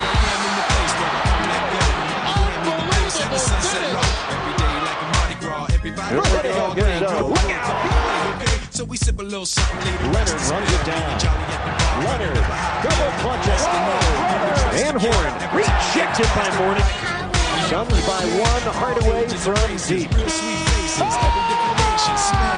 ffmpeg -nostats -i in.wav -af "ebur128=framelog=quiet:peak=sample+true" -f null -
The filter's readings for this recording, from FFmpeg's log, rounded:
Integrated loudness:
  I:         -19.5 LUFS
  Threshold: -29.5 LUFS
Loudness range:
  LRA:         2.1 LU
  Threshold: -39.6 LUFS
  LRA low:   -20.6 LUFS
  LRA high:  -18.5 LUFS
Sample peak:
  Peak:       -4.4 dBFS
True peak:
  Peak:       -4.4 dBFS